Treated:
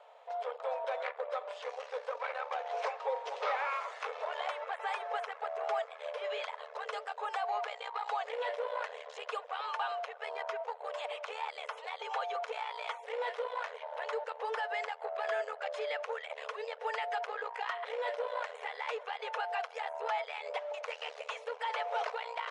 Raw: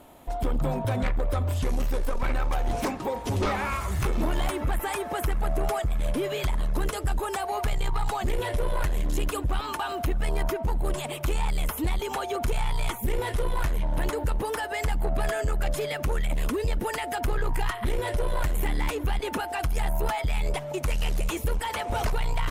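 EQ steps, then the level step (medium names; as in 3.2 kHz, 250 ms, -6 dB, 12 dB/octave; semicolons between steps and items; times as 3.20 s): brick-wall FIR band-pass 430–11000 Hz; distance through air 190 m; -3.0 dB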